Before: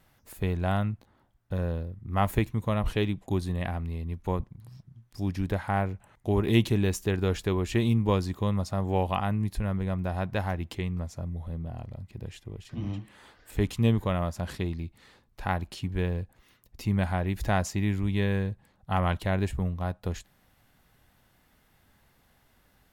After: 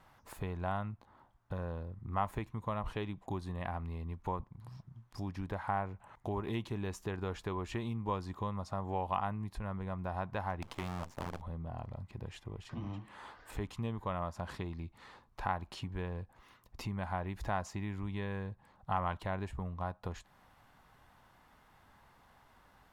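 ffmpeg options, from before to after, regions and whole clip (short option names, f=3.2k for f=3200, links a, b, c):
-filter_complex "[0:a]asettb=1/sr,asplit=3[a][b][c];[a]atrim=end=10.624[d];[b]atrim=start=10.62:end=11.42,asetpts=PTS-STARTPTS,afade=t=in:d=0.004:c=qsin,afade=t=out:st=0.796:d=0.004:c=qsin,equalizer=f=68:w=4.8:g=-6.5,bandreject=f=50:t=h:w=6,bandreject=f=100:t=h:w=6,bandreject=f=150:t=h:w=6,bandreject=f=200:t=h:w=6,bandreject=f=250:t=h:w=6,bandreject=f=300:t=h:w=6,bandreject=f=350:t=h:w=6,bandreject=f=400:t=h:w=6,bandreject=f=450:t=h:w=6,bandreject=f=500:t=h:w=6,acrusher=bits=6:dc=4:mix=0:aa=0.000001[e];[c]atrim=start=11.416[f];[d][e]acrossfade=d=0.004:c1=hsin:c2=qsin[g];[g][f]acrossfade=d=0.004:c1=qsin:c2=hsin,highshelf=f=11k:g=-11.5,acompressor=threshold=-39dB:ratio=2.5,equalizer=f=1k:w=1.3:g=11,volume=-2dB"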